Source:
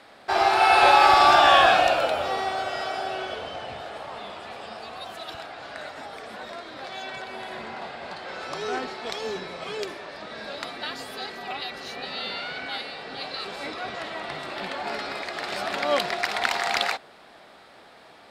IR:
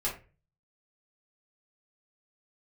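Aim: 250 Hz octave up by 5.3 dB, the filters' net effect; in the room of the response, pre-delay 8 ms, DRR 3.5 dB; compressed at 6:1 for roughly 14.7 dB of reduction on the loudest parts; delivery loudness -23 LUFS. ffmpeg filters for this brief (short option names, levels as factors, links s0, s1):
-filter_complex "[0:a]equalizer=f=250:t=o:g=7.5,acompressor=threshold=0.0398:ratio=6,asplit=2[s0][s1];[1:a]atrim=start_sample=2205,adelay=8[s2];[s1][s2]afir=irnorm=-1:irlink=0,volume=0.355[s3];[s0][s3]amix=inputs=2:normalize=0,volume=2.66"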